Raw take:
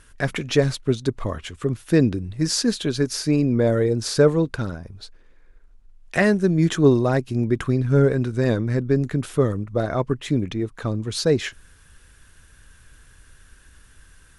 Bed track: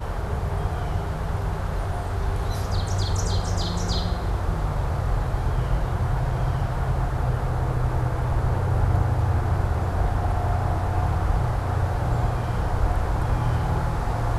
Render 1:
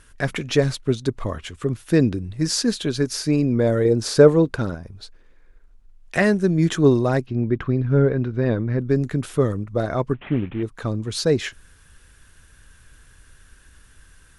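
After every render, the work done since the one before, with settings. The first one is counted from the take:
0:03.85–0:04.75: parametric band 470 Hz +4.5 dB 2.8 octaves
0:07.26–0:08.80: high-frequency loss of the air 270 metres
0:10.14–0:10.63: variable-slope delta modulation 16 kbit/s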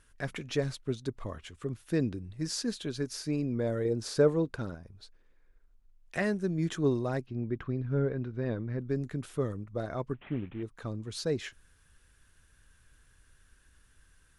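level −12 dB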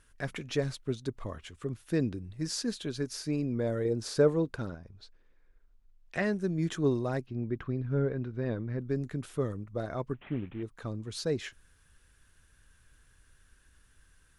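0:04.68–0:06.33: low-pass filter 6,500 Hz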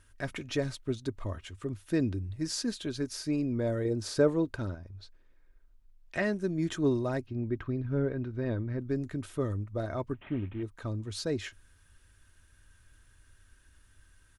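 parametric band 97 Hz +9.5 dB 0.35 octaves
comb filter 3.2 ms, depth 31%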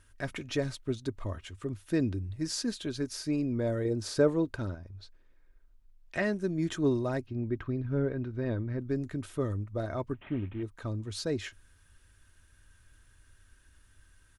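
no processing that can be heard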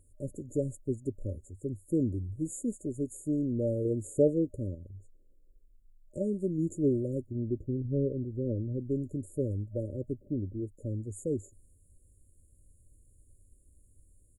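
brick-wall band-stop 610–6,700 Hz
dynamic equaliser 900 Hz, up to +7 dB, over −56 dBFS, Q 3.1

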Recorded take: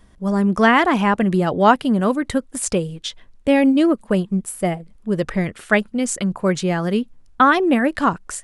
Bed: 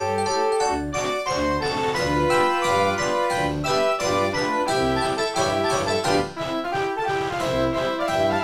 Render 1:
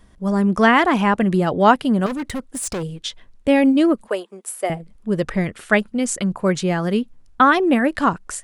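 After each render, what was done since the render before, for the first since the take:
0:02.06–0:02.83: gain into a clipping stage and back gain 22.5 dB
0:04.08–0:04.70: high-pass filter 400 Hz 24 dB per octave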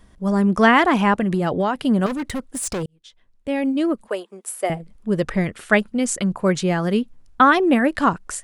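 0:01.16–0:01.85: downward compressor 12 to 1, threshold −16 dBFS
0:02.86–0:04.57: fade in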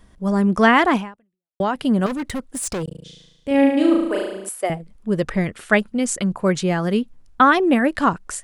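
0:00.96–0:01.60: fade out exponential
0:02.84–0:04.49: flutter between parallel walls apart 6.2 metres, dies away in 0.92 s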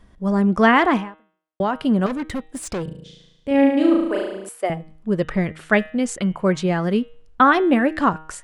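high-shelf EQ 6,100 Hz −10.5 dB
hum removal 157.3 Hz, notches 25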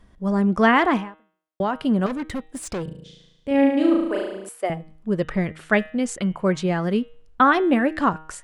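level −2 dB

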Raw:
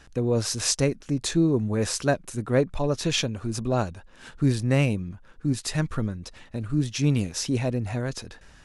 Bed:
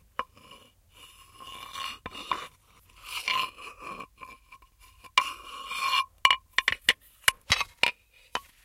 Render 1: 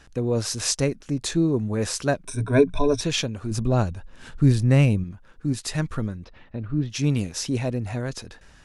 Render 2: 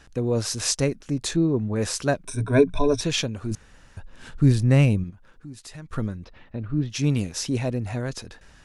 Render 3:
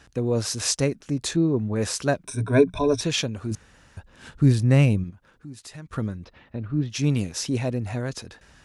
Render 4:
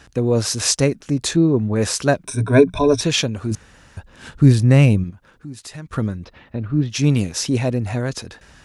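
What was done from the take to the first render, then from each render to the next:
0:02.25–0:03.01: EQ curve with evenly spaced ripples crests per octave 1.6, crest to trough 18 dB; 0:03.51–0:05.04: low-shelf EQ 160 Hz +10 dB; 0:06.24–0:06.90: high-frequency loss of the air 290 metres
0:01.36–0:01.76: high-frequency loss of the air 140 metres; 0:03.55–0:03.97: fill with room tone; 0:05.10–0:05.93: downward compressor 2 to 1, threshold −48 dBFS
high-pass filter 48 Hz
level +6 dB; brickwall limiter −1 dBFS, peak gain reduction 1.5 dB

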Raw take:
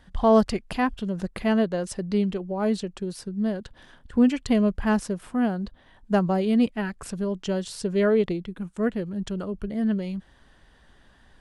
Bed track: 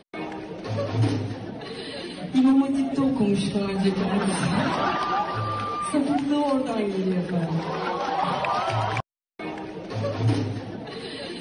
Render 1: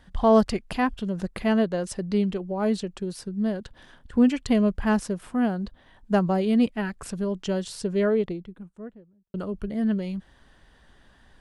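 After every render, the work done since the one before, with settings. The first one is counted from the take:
0:07.62–0:09.34: fade out and dull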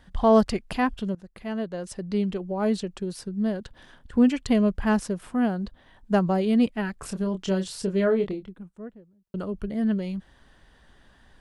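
0:01.15–0:02.49: fade in, from −19.5 dB
0:07.00–0:08.49: double-tracking delay 26 ms −7 dB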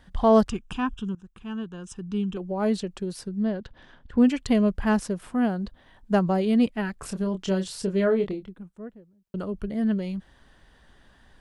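0:00.49–0:02.37: phaser with its sweep stopped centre 3,000 Hz, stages 8
0:03.43–0:04.18: high-frequency loss of the air 110 metres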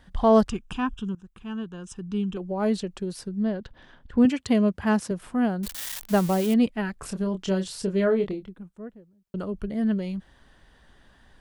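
0:04.25–0:05.11: high-pass filter 73 Hz 24 dB per octave
0:05.63–0:06.54: spike at every zero crossing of −22 dBFS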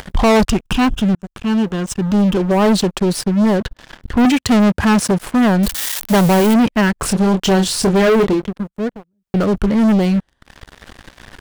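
upward compression, threshold −42 dBFS
leveller curve on the samples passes 5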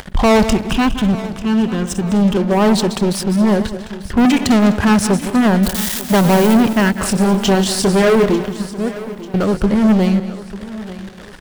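feedback delay that plays each chunk backwards 102 ms, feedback 56%, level −11 dB
repeating echo 893 ms, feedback 47%, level −16.5 dB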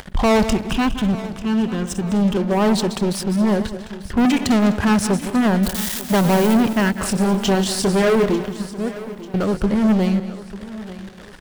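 level −4 dB

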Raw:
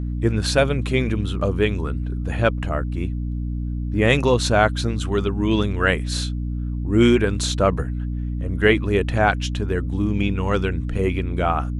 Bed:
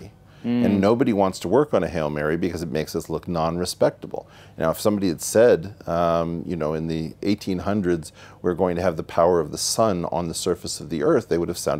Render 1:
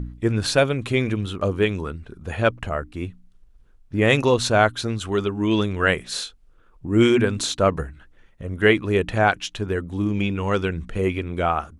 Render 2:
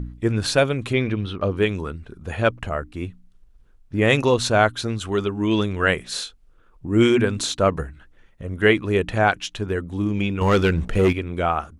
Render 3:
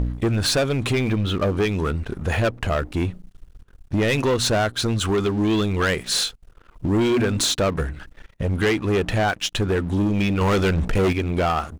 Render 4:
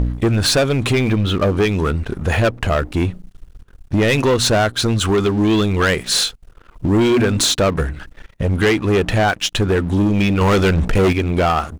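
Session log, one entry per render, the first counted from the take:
hum removal 60 Hz, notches 5
0:00.93–0:01.57: Savitzky-Golay smoothing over 15 samples; 0:10.41–0:11.13: leveller curve on the samples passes 2
downward compressor 2.5 to 1, threshold −28 dBFS, peak gain reduction 11.5 dB; leveller curve on the samples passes 3
level +5 dB

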